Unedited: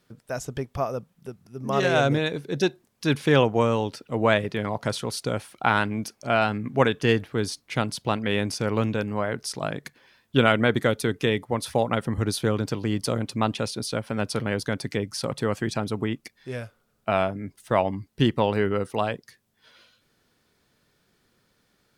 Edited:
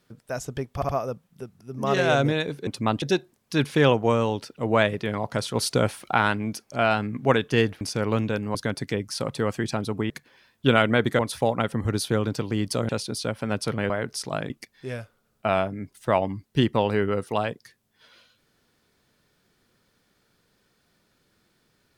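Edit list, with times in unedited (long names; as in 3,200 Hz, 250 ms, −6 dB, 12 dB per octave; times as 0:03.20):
0:00.75: stutter 0.07 s, 3 plays
0:05.06–0:05.64: clip gain +5.5 dB
0:07.32–0:08.46: remove
0:09.20–0:09.80: swap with 0:14.58–0:16.13
0:10.89–0:11.52: remove
0:13.22–0:13.57: move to 0:02.53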